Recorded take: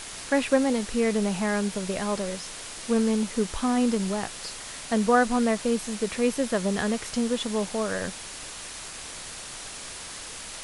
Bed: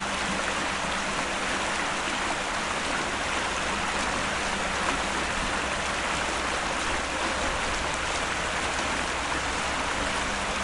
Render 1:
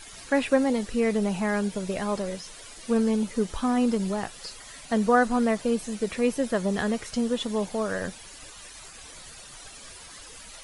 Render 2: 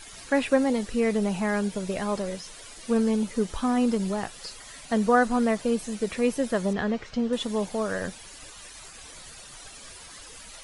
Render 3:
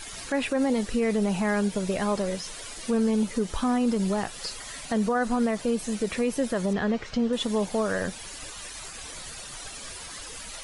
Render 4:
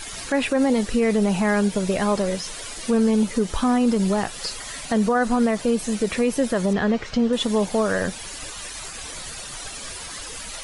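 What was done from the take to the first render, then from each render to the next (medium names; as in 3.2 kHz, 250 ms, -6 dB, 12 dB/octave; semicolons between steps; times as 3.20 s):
noise reduction 12 dB, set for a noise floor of -40 dBFS
6.73–7.33 s: distance through air 160 m
in parallel at -2 dB: compression, threshold -33 dBFS, peak gain reduction 16.5 dB; on the sum: peak limiter -17 dBFS, peak gain reduction 9.5 dB
trim +5 dB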